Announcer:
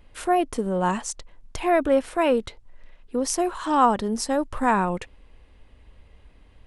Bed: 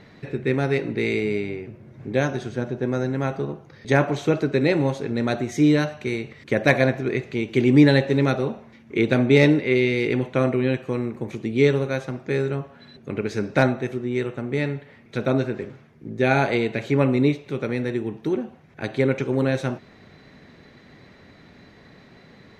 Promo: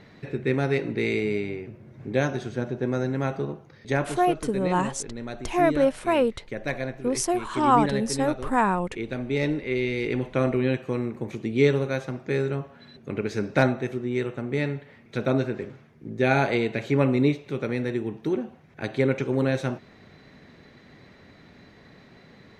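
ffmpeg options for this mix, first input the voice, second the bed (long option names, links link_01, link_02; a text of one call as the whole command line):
ffmpeg -i stem1.wav -i stem2.wav -filter_complex "[0:a]adelay=3900,volume=-1dB[link_01];[1:a]volume=8dB,afade=type=out:start_time=3.46:duration=0.85:silence=0.316228,afade=type=in:start_time=9.26:duration=1.31:silence=0.316228[link_02];[link_01][link_02]amix=inputs=2:normalize=0" out.wav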